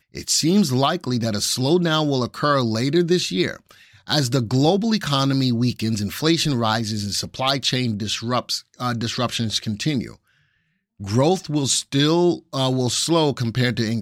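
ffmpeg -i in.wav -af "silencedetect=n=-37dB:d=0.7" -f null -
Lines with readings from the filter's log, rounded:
silence_start: 10.14
silence_end: 11.00 | silence_duration: 0.86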